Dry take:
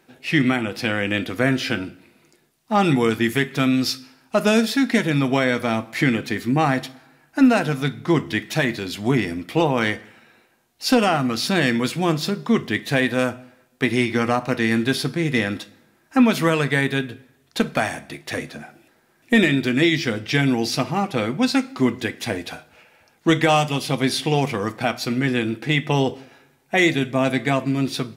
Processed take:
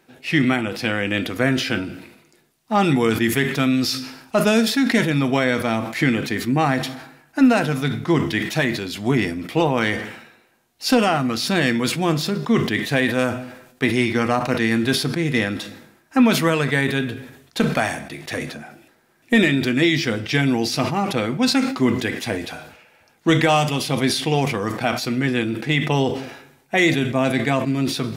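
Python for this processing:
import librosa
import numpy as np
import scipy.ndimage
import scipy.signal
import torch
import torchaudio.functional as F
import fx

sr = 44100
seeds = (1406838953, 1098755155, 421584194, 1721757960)

y = fx.sustainer(x, sr, db_per_s=71.0)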